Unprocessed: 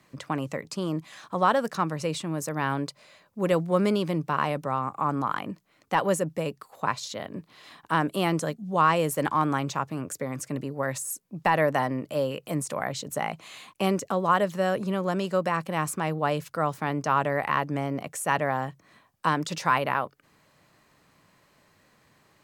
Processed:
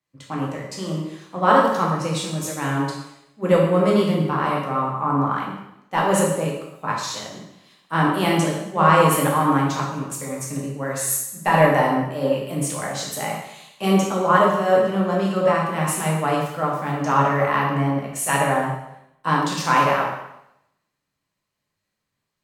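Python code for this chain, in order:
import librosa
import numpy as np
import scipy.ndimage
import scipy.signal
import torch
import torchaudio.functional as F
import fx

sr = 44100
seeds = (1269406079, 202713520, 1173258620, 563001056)

y = fx.rev_plate(x, sr, seeds[0], rt60_s=1.2, hf_ratio=1.0, predelay_ms=0, drr_db=-3.0)
y = fx.band_widen(y, sr, depth_pct=70)
y = y * librosa.db_to_amplitude(1.0)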